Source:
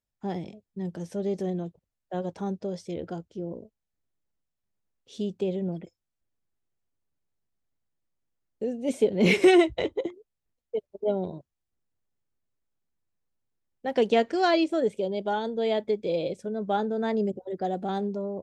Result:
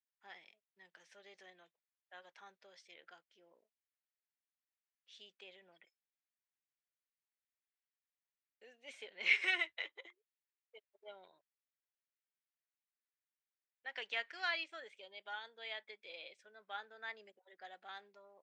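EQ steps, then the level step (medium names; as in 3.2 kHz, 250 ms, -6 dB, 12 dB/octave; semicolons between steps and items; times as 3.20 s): ladder band-pass 2.3 kHz, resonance 35%; +4.0 dB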